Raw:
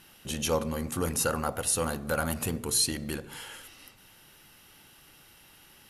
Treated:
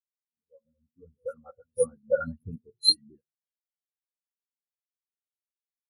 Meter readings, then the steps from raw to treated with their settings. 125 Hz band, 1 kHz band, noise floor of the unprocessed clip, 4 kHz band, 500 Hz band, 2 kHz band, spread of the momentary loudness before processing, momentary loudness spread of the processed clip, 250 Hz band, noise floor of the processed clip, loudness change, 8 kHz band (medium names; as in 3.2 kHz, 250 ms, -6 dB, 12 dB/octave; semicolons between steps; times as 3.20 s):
-11.5 dB, -11.5 dB, -57 dBFS, +6.5 dB, +1.5 dB, -9.5 dB, 16 LU, 19 LU, -12.0 dB, under -85 dBFS, +3.0 dB, -13.0 dB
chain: fade-in on the opening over 1.76 s; reverse echo 608 ms -14 dB; in parallel at -8 dB: bit crusher 4-bit; on the sum: phase dispersion highs, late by 106 ms, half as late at 2.3 kHz; spectral contrast expander 4:1